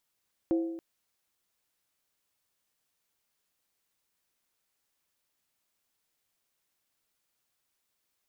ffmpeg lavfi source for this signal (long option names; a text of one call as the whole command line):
ffmpeg -f lavfi -i "aevalsrc='0.0794*pow(10,-3*t/0.97)*sin(2*PI*331*t)+0.0237*pow(10,-3*t/0.768)*sin(2*PI*527.6*t)+0.00708*pow(10,-3*t/0.664)*sin(2*PI*707*t)+0.00211*pow(10,-3*t/0.64)*sin(2*PI*760*t)+0.000631*pow(10,-3*t/0.596)*sin(2*PI*878.1*t)':duration=0.28:sample_rate=44100" out.wav